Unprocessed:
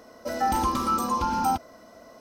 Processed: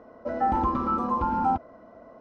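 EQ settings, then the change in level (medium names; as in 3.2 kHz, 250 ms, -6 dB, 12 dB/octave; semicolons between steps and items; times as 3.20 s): low-pass 1.3 kHz 12 dB/octave; +1.0 dB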